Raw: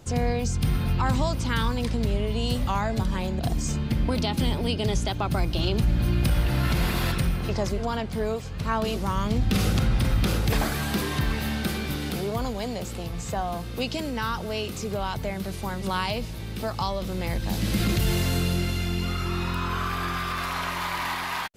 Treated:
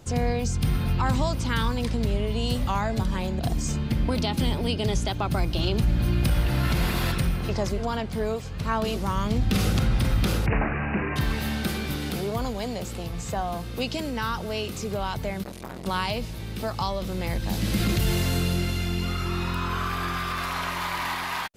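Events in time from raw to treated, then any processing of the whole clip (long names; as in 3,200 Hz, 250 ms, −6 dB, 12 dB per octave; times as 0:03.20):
0:10.46–0:11.16: bad sample-rate conversion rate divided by 8×, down none, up filtered
0:15.43–0:15.86: saturating transformer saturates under 940 Hz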